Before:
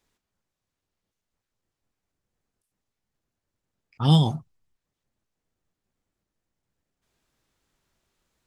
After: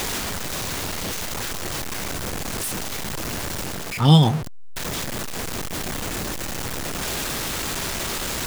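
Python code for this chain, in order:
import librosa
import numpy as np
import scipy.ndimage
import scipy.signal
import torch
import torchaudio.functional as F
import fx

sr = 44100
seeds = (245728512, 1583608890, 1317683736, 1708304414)

p1 = x + 0.5 * 10.0 ** (-29.5 / 20.0) * np.sign(x)
p2 = fx.low_shelf(p1, sr, hz=150.0, db=-3.5)
p3 = fx.rider(p2, sr, range_db=4, speed_s=0.5)
y = p2 + (p3 * librosa.db_to_amplitude(2.5))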